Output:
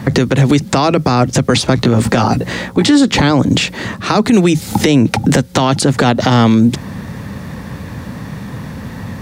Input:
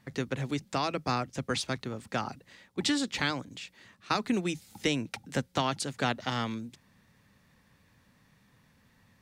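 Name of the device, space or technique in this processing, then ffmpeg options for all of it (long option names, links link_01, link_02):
mastering chain: -filter_complex "[0:a]asettb=1/sr,asplit=3[link_01][link_02][link_03];[link_01]atrim=end=1.764[link_04];[link_02]atrim=start=1.76:end=2.91,asetpts=PTS-STARTPTS,afade=type=in:duration=0.004:curve=qsin,afade=type=out:start_time=1.146:duration=0.004:curve=qsin,asplit=2[link_05][link_06];[link_06]adelay=17,volume=-5dB[link_07];[link_05][link_07]amix=inputs=2:normalize=0,atrim=end_sample=50715[link_08];[link_03]atrim=start=2.906[link_09];[link_04][link_08]acrossfade=duration=0.004:curve1=hsin:curve2=qsin[link_10];[link_10][link_09]acrossfade=duration=0.004:curve1=qsin:curve2=hsin,highpass=51,equalizer=frequency=2500:width_type=o:width=0.77:gain=-2,acrossover=split=1200|2400[link_11][link_12][link_13];[link_11]acompressor=threshold=-38dB:ratio=4[link_14];[link_12]acompressor=threshold=-49dB:ratio=4[link_15];[link_13]acompressor=threshold=-41dB:ratio=4[link_16];[link_14][link_15][link_16]amix=inputs=3:normalize=0,acompressor=threshold=-42dB:ratio=2.5,tiltshelf=frequency=1200:gain=5.5,alimiter=level_in=35dB:limit=-1dB:release=50:level=0:latency=1,volume=-1dB"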